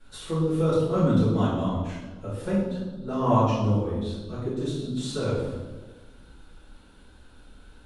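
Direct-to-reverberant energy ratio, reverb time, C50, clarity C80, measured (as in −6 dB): −12.5 dB, 1.3 s, 0.5 dB, 3.5 dB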